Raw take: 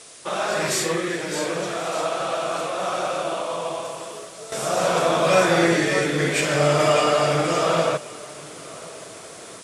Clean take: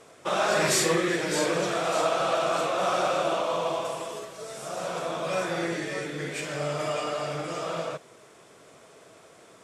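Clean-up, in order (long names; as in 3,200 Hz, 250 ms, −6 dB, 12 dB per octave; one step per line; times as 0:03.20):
noise reduction from a noise print 14 dB
echo removal 1,078 ms −22 dB
level 0 dB, from 0:04.52 −11.5 dB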